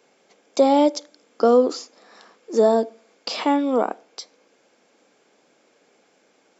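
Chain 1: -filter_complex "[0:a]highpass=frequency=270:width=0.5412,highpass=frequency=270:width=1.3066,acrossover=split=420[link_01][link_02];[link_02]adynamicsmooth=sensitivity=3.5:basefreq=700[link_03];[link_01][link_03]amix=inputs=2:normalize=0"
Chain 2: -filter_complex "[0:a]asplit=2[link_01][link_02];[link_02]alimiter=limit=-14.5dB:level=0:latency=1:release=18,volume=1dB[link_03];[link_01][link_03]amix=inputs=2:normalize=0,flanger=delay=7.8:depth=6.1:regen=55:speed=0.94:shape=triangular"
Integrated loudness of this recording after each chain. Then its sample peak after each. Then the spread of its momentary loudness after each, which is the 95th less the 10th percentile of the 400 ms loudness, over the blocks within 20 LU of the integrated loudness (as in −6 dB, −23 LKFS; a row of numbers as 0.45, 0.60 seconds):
−21.0, −20.0 LKFS; −7.0, −4.5 dBFS; 17, 17 LU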